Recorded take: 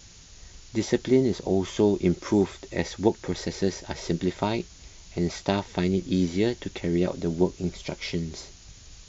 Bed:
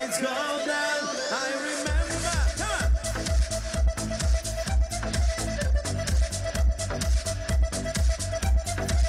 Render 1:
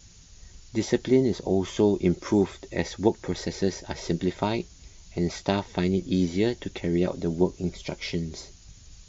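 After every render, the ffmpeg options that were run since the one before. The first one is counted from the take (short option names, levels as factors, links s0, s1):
-af "afftdn=nr=6:nf=-50"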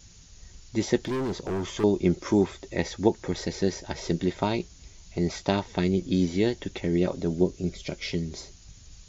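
-filter_complex "[0:a]asettb=1/sr,asplit=3[s0][s1][s2];[s0]atrim=end=1.014[s3];[s1]atrim=start=1.01:end=1.84,asetpts=PTS-STARTPTS,afade=t=in:d=0.004:c=qsin,afade=t=out:st=0.826:d=0.004:c=qsin,asoftclip=type=hard:threshold=0.0501[s4];[s2]atrim=start=1.836[s5];[s3][s4]acrossfade=d=0.004:c1=hsin:c2=qsin[s6];[s6][s5]acrossfade=d=0.004:c1=qsin:c2=hsin,asettb=1/sr,asplit=3[s7][s8][s9];[s7]atrim=end=7.344[s10];[s8]atrim=start=7.34:end=8.11,asetpts=PTS-STARTPTS,afade=t=in:d=0.004:c=qsin,afade=t=out:st=0.766:d=0.004:c=qsin,equalizer=f=920:t=o:w=0.51:g=-9.5[s11];[s9]atrim=start=8.106[s12];[s10][s11]acrossfade=d=0.004:c1=hsin:c2=qsin[s13];[s13][s12]acrossfade=d=0.004:c1=qsin:c2=hsin"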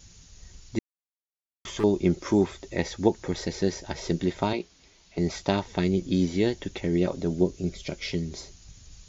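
-filter_complex "[0:a]asettb=1/sr,asplit=3[s0][s1][s2];[s0]atrim=end=4.534[s3];[s1]atrim=start=4.53:end=5.18,asetpts=PTS-STARTPTS,afade=t=in:d=0.004:c=qsin,afade=t=out:st=0.646:d=0.004:c=qsin,acrossover=split=220 5400:gain=0.158 1 0.178[s4][s5][s6];[s4][s5][s6]amix=inputs=3:normalize=0[s7];[s2]atrim=start=5.176[s8];[s3][s7]acrossfade=d=0.004:c1=hsin:c2=qsin[s9];[s9][s8]acrossfade=d=0.004:c1=qsin:c2=hsin,asplit=3[s10][s11][s12];[s10]atrim=end=0.79,asetpts=PTS-STARTPTS,afade=t=out:st=0.786:d=0.004:c=hsin[s13];[s11]atrim=start=0.79:end=1.65,asetpts=PTS-STARTPTS,volume=0[s14];[s12]atrim=start=1.65,asetpts=PTS-STARTPTS,afade=t=in:d=0.004:c=hsin[s15];[s13][s14][s15]concat=n=3:v=0:a=1"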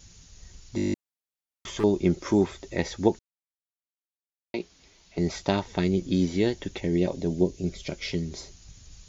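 -filter_complex "[0:a]asettb=1/sr,asplit=3[s0][s1][s2];[s0]atrim=end=6.804[s3];[s1]atrim=start=6.8:end=7.65,asetpts=PTS-STARTPTS,afade=t=in:d=0.004:c=qsin,afade=t=out:st=0.846:d=0.004:c=qsin,equalizer=f=1300:t=o:w=0.32:g=-13.5[s4];[s2]atrim=start=7.646[s5];[s3][s4]acrossfade=d=0.004:c1=hsin:c2=qsin[s6];[s6][s5]acrossfade=d=0.004:c1=qsin:c2=hsin,asplit=12[s7][s8][s9][s10][s11][s12][s13][s14][s15][s16][s17][s18];[s7]atrim=end=0.782[s19];[s8]atrim=start=0.758:end=0.782[s20];[s9]atrim=start=0.758:end=0.782[s21];[s10]atrim=start=0.758:end=0.782[s22];[s11]atrim=start=0.758:end=0.782[s23];[s12]atrim=start=0.758:end=0.782[s24];[s13]atrim=start=0.758:end=0.782[s25];[s14]atrim=start=0.758:end=0.782[s26];[s15]atrim=start=0.758:end=0.782[s27];[s16]atrim=start=0.938:end=3.19,asetpts=PTS-STARTPTS,afade=t=out:st=2.248:d=0.004:c=hsin[s28];[s17]atrim=start=3.19:end=4.54,asetpts=PTS-STARTPTS,volume=0[s29];[s18]atrim=start=4.54,asetpts=PTS-STARTPTS,afade=t=in:d=0.004:c=hsin[s30];[s19][s20]acrossfade=d=0.004:c1=hsin:c2=hsin[s31];[s31][s21]acrossfade=d=0.004:c1=hsin:c2=hsin[s32];[s32][s22]acrossfade=d=0.004:c1=hsin:c2=hsin[s33];[s33][s23]acrossfade=d=0.004:c1=hsin:c2=hsin[s34];[s34][s24]acrossfade=d=0.004:c1=hsin:c2=hsin[s35];[s35][s25]acrossfade=d=0.004:c1=hsin:c2=hsin[s36];[s36][s26]acrossfade=d=0.004:c1=hsin:c2=hsin[s37];[s37][s27]acrossfade=d=0.004:c1=hsin:c2=hsin[s38];[s28][s29][s30]concat=n=3:v=0:a=1[s39];[s38][s39]acrossfade=d=0.004:c1=hsin:c2=hsin"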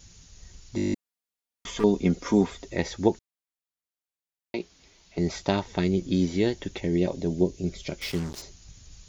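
-filter_complex "[0:a]asettb=1/sr,asplit=3[s0][s1][s2];[s0]atrim=end=0.934[s3];[s1]atrim=start=0.93:end=2.65,asetpts=PTS-STARTPTS,afade=t=in:d=0.004:c=qsin,afade=t=out:st=1.716:d=0.004:c=qsin,aecho=1:1:4.2:0.58,atrim=end_sample=75852[s4];[s2]atrim=start=2.646[s5];[s3][s4]acrossfade=d=0.004:c1=hsin:c2=qsin[s6];[s6][s5]acrossfade=d=0.004:c1=qsin:c2=hsin,asettb=1/sr,asplit=3[s7][s8][s9];[s7]atrim=end=8.014[s10];[s8]atrim=start=8.01:end=8.42,asetpts=PTS-STARTPTS,afade=t=in:d=0.004:c=qsin,afade=t=out:st=0.406:d=0.004:c=qsin,acrusher=bits=5:mix=0:aa=0.5[s11];[s9]atrim=start=8.416[s12];[s10][s11]acrossfade=d=0.004:c1=hsin:c2=qsin[s13];[s13][s12]acrossfade=d=0.004:c1=qsin:c2=hsin"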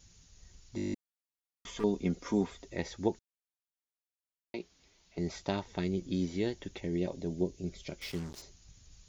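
-af "volume=0.376"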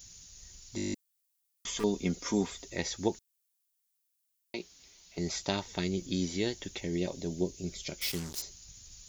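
-af "crystalizer=i=4:c=0"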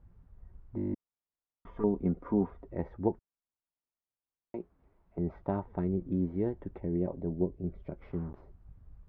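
-af "lowpass=f=1200:w=0.5412,lowpass=f=1200:w=1.3066,lowshelf=f=130:g=6"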